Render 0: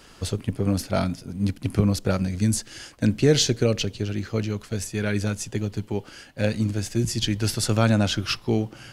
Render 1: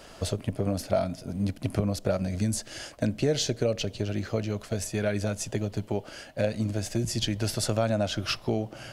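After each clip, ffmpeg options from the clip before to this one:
-af "equalizer=f=630:t=o:w=0.48:g=12.5,acompressor=threshold=-26dB:ratio=2.5"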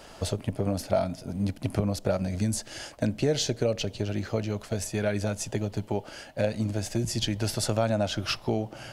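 -af "equalizer=f=860:w=5.5:g=5"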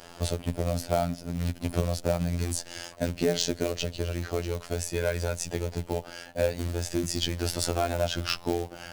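-af "acrusher=bits=4:mode=log:mix=0:aa=0.000001,afftfilt=real='hypot(re,im)*cos(PI*b)':imag='0':win_size=2048:overlap=0.75,volume=3.5dB"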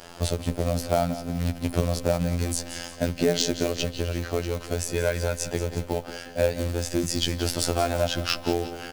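-af "aecho=1:1:178|356|534|712|890:0.224|0.107|0.0516|0.0248|0.0119,volume=3dB"

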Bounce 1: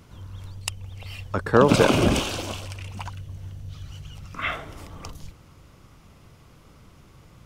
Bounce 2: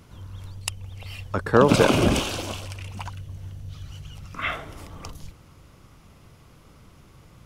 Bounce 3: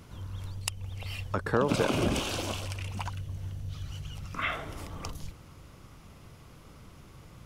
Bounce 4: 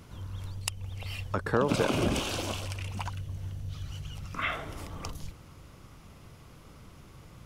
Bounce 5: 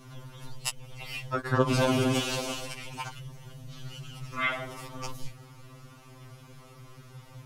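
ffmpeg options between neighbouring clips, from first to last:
-af "equalizer=f=11k:w=5.9:g=4.5"
-af "acompressor=threshold=-30dB:ratio=2"
-af anull
-af "afftfilt=real='re*2.45*eq(mod(b,6),0)':imag='im*2.45*eq(mod(b,6),0)':win_size=2048:overlap=0.75,volume=4.5dB"

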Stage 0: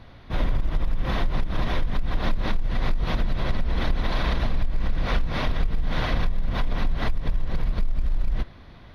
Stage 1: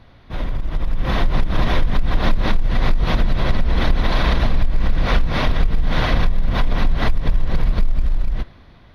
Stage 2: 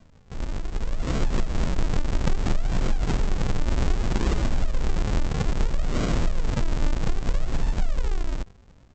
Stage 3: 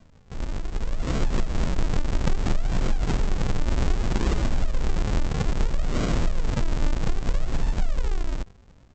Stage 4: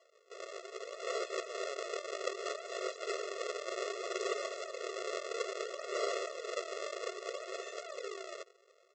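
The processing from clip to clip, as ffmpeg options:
-af "dynaudnorm=f=170:g=11:m=9.5dB,volume=-1dB"
-af "highshelf=f=2.2k:g=10,aresample=16000,acrusher=samples=36:mix=1:aa=0.000001:lfo=1:lforange=36:lforate=0.62,aresample=44100,volume=-7dB"
-af anull
-af "afftfilt=real='re*eq(mod(floor(b*sr/1024/360),2),1)':imag='im*eq(mod(floor(b*sr/1024/360),2),1)':win_size=1024:overlap=0.75,volume=-1dB"

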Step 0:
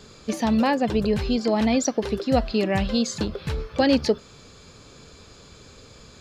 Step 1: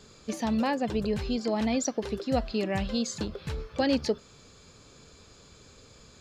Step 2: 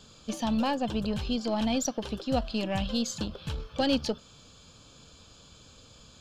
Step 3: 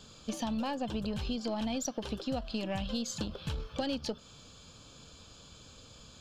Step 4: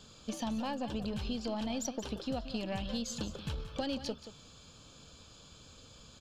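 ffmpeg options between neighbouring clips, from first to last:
-af "equalizer=f=7.2k:w=2:g=3,volume=-6.5dB"
-af "aeval=exprs='0.211*(cos(1*acos(clip(val(0)/0.211,-1,1)))-cos(1*PI/2))+0.00668*(cos(8*acos(clip(val(0)/0.211,-1,1)))-cos(8*PI/2))':c=same,equalizer=f=400:t=o:w=0.33:g=-9,equalizer=f=2k:t=o:w=0.33:g=-10,equalizer=f=3.15k:t=o:w=0.33:g=8"
-af "acompressor=threshold=-31dB:ratio=6"
-af "aecho=1:1:179:0.237,volume=-2dB"

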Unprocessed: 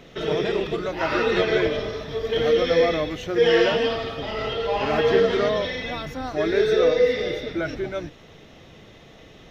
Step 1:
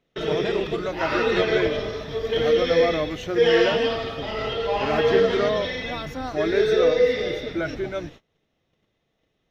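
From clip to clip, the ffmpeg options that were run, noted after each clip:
-af "agate=range=-26dB:threshold=-42dB:ratio=16:detection=peak"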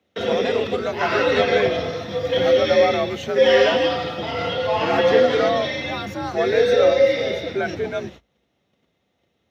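-af "afreqshift=54,volume=3dB"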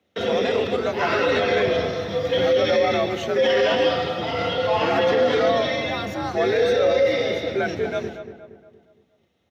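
-filter_complex "[0:a]alimiter=limit=-12dB:level=0:latency=1:release=17,asplit=2[a][b];[b]adelay=234,lowpass=f=1.9k:p=1,volume=-9.5dB,asplit=2[c][d];[d]adelay=234,lowpass=f=1.9k:p=1,volume=0.46,asplit=2[e][f];[f]adelay=234,lowpass=f=1.9k:p=1,volume=0.46,asplit=2[g][h];[h]adelay=234,lowpass=f=1.9k:p=1,volume=0.46,asplit=2[i][j];[j]adelay=234,lowpass=f=1.9k:p=1,volume=0.46[k];[c][e][g][i][k]amix=inputs=5:normalize=0[l];[a][l]amix=inputs=2:normalize=0"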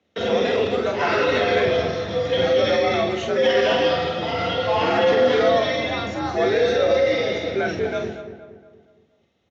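-filter_complex "[0:a]asplit=2[a][b];[b]adelay=48,volume=-6dB[c];[a][c]amix=inputs=2:normalize=0,aresample=16000,aresample=44100"

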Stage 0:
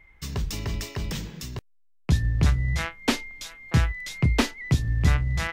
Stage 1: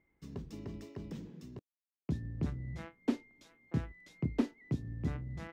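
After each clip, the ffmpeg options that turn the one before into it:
-af "bandpass=f=280:t=q:w=1.4:csg=0,aemphasis=mode=production:type=75kf,volume=-5dB"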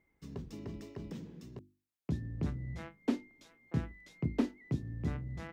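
-af "bandreject=f=50:t=h:w=6,bandreject=f=100:t=h:w=6,bandreject=f=150:t=h:w=6,bandreject=f=200:t=h:w=6,bandreject=f=250:t=h:w=6,bandreject=f=300:t=h:w=6,bandreject=f=350:t=h:w=6,volume=1dB"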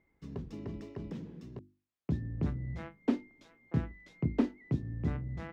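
-af "lowpass=f=2.5k:p=1,volume=2.5dB"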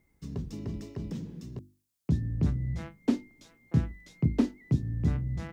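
-af "bass=f=250:g=7,treble=f=4k:g=14"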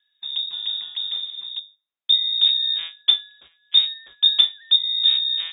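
-af "agate=range=-9dB:threshold=-54dB:ratio=16:detection=peak,lowpass=f=3.2k:t=q:w=0.5098,lowpass=f=3.2k:t=q:w=0.6013,lowpass=f=3.2k:t=q:w=0.9,lowpass=f=3.2k:t=q:w=2.563,afreqshift=-3800,volume=8.5dB"

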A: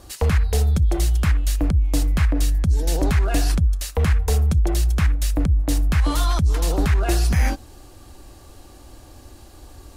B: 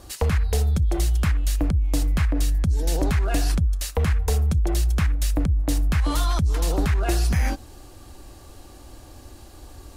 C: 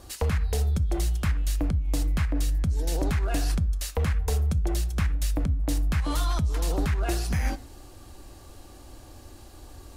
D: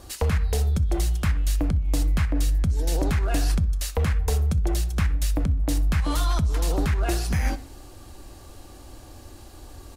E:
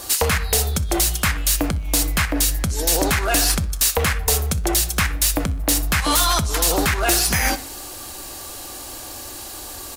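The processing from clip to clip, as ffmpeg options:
-af "acompressor=threshold=-17dB:ratio=6"
-filter_complex "[0:a]asplit=2[a][b];[b]asoftclip=type=tanh:threshold=-29dB,volume=-11dB[c];[a][c]amix=inputs=2:normalize=0,flanger=delay=7.5:depth=2:regen=-89:speed=1.9:shape=triangular"
-filter_complex "[0:a]asplit=2[a][b];[b]adelay=63,lowpass=f=4.7k:p=1,volume=-22dB,asplit=2[c][d];[d]adelay=63,lowpass=f=4.7k:p=1,volume=0.54,asplit=2[e][f];[f]adelay=63,lowpass=f=4.7k:p=1,volume=0.54,asplit=2[g][h];[h]adelay=63,lowpass=f=4.7k:p=1,volume=0.54[i];[a][c][e][g][i]amix=inputs=5:normalize=0,volume=2.5dB"
-filter_complex "[0:a]aemphasis=mode=production:type=50fm,asplit=2[a][b];[b]highpass=f=720:p=1,volume=15dB,asoftclip=type=tanh:threshold=-8.5dB[c];[a][c]amix=inputs=2:normalize=0,lowpass=f=6.4k:p=1,volume=-6dB,volume=3.5dB"

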